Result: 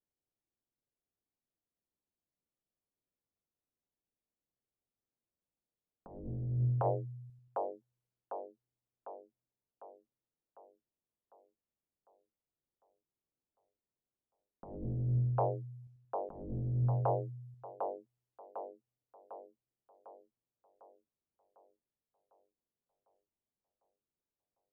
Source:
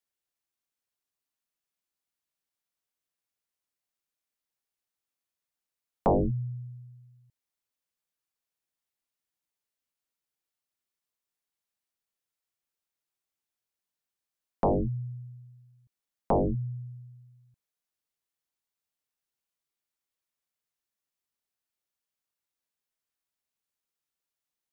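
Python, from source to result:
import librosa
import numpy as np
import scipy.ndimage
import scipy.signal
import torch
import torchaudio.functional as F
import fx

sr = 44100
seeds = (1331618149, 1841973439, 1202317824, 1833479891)

y = fx.env_lowpass(x, sr, base_hz=500.0, full_db=-31.5)
y = fx.echo_split(y, sr, split_hz=470.0, low_ms=89, high_ms=751, feedback_pct=52, wet_db=-9)
y = fx.over_compress(y, sr, threshold_db=-33.0, ratio=-0.5)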